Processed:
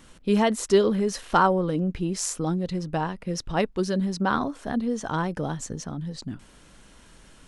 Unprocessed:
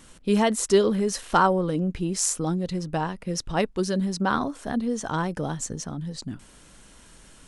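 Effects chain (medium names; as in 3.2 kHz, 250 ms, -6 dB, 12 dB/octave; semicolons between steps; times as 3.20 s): peaking EQ 9 kHz -6 dB 1.2 oct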